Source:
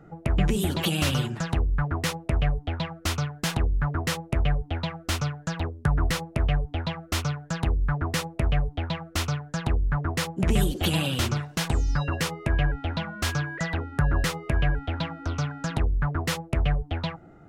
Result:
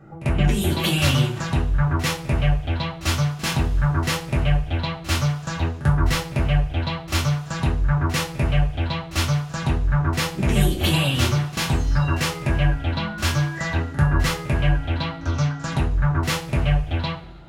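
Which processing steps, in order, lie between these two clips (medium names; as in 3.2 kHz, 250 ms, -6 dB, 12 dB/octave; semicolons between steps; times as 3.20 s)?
pre-echo 44 ms -16 dB; two-slope reverb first 0.3 s, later 2 s, from -22 dB, DRR -3.5 dB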